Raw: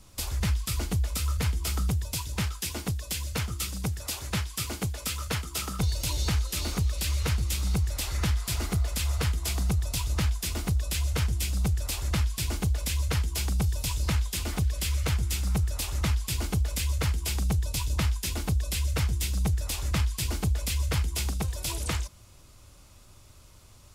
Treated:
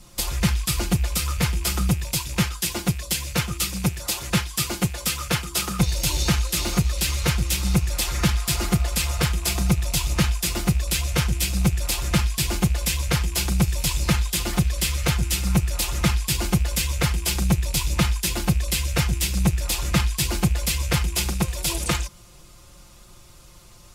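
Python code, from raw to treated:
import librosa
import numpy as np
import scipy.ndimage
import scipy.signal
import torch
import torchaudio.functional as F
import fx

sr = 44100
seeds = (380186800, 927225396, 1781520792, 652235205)

y = fx.rattle_buzz(x, sr, strikes_db=-35.0, level_db=-37.0)
y = y + 0.69 * np.pad(y, (int(5.7 * sr / 1000.0), 0))[:len(y)]
y = fx.cheby_harmonics(y, sr, harmonics=(5, 7), levels_db=(-34, -28), full_scale_db=-14.0)
y = y * librosa.db_to_amplitude(6.5)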